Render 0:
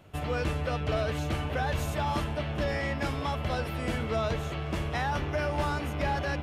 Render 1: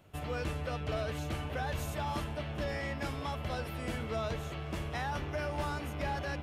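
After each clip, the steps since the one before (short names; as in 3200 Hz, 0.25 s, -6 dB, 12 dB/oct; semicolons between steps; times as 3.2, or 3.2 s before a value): high shelf 8000 Hz +5.5 dB; gain -6 dB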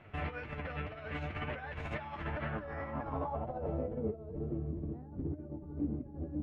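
negative-ratio compressor -39 dBFS, ratio -0.5; flange 2 Hz, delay 7.9 ms, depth 4.4 ms, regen +44%; low-pass sweep 2100 Hz -> 300 Hz, 2.16–4.58; gain +4 dB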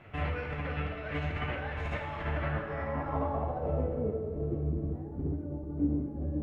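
plate-style reverb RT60 1.5 s, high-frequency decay 0.9×, DRR 1.5 dB; gain +2.5 dB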